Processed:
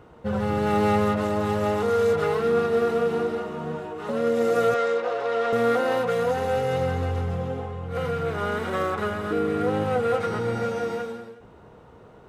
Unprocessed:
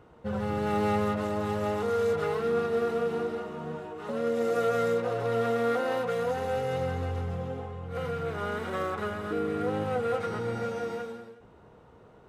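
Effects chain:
0:04.74–0:05.53: band-pass filter 450–5,500 Hz
level +5.5 dB

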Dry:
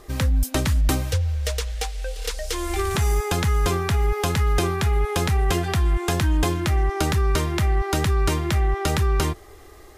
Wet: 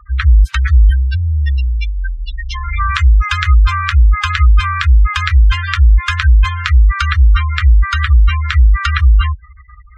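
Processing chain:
inverse Chebyshev band-stop filter 120–690 Hz, stop band 40 dB
gate on every frequency bin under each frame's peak −15 dB strong
high-pass filter 72 Hz 12 dB per octave
head-to-tape spacing loss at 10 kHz 26 dB
boost into a limiter +21 dB
level −1 dB

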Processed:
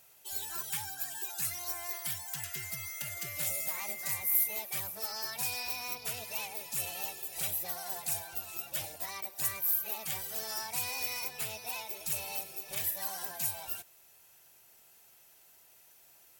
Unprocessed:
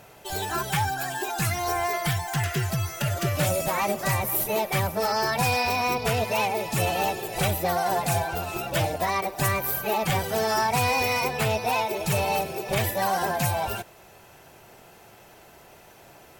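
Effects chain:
0:02.53–0:04.61: steady tone 2,100 Hz −30 dBFS
first-order pre-emphasis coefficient 0.9
level −4 dB

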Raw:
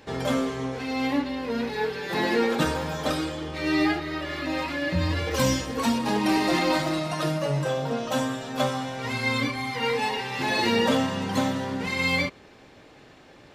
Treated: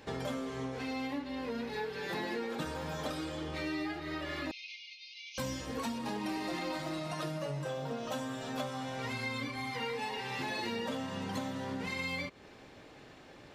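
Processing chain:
downward compressor 5 to 1, threshold −32 dBFS, peak gain reduction 12.5 dB
0:04.51–0:05.38: linear-phase brick-wall band-pass 2,100–6,700 Hz
0:07.65–0:08.63: bit-depth reduction 12 bits, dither none
level −3 dB

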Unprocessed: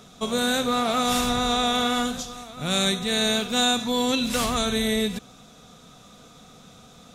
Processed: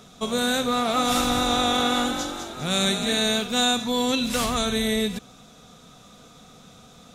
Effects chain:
0:00.75–0:03.20: echo with shifted repeats 203 ms, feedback 47%, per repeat +47 Hz, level −7.5 dB

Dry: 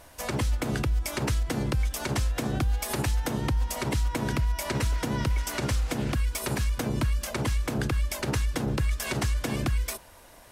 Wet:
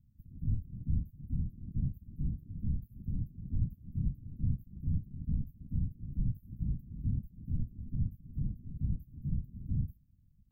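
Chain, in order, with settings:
inverse Chebyshev band-stop filter 470–7,200 Hz, stop band 80 dB
random phases in short frames
level −5 dB

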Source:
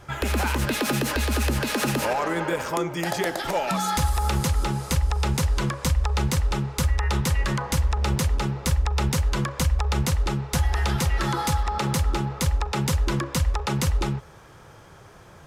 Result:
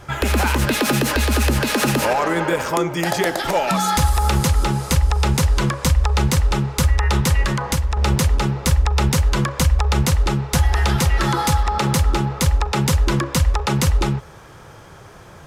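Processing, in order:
0:07.45–0:07.97: downward compressor, threshold −22 dBFS, peak gain reduction 5.5 dB
level +6 dB

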